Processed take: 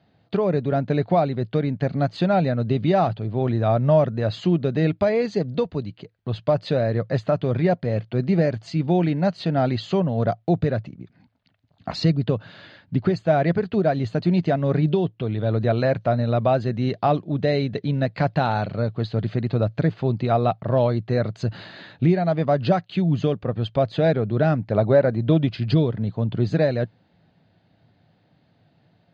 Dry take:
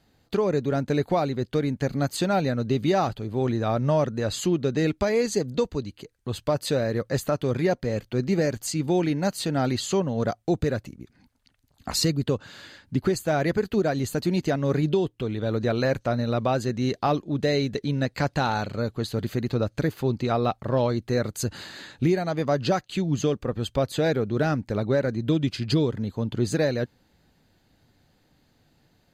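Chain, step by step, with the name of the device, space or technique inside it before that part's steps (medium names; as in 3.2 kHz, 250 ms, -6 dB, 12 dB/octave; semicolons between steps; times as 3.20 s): guitar cabinet (cabinet simulation 86–4100 Hz, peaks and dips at 110 Hz +8 dB, 170 Hz +8 dB, 660 Hz +8 dB); 24.66–25.50 s: dynamic bell 750 Hz, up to +6 dB, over -33 dBFS, Q 0.73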